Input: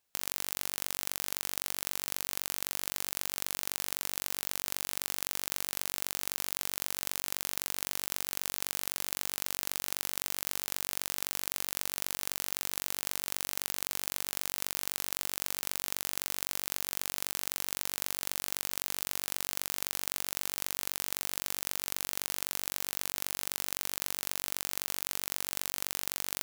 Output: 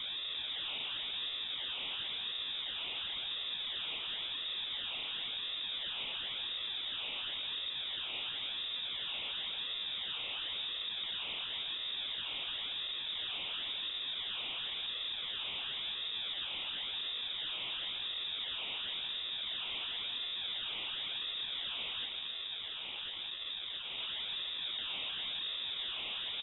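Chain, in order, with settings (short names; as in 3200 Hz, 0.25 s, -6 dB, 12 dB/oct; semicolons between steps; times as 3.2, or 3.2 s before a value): infinite clipping; 22.07–23.98 fixed phaser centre 1400 Hz, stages 4; in parallel at -6 dB: wrapped overs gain 34.5 dB; on the sum: decimation with a swept rate 42×, swing 100% 0.95 Hz; on a send: echo 0.287 s -7.5 dB; on the sum: inverted band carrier 3700 Hz; gain -7 dB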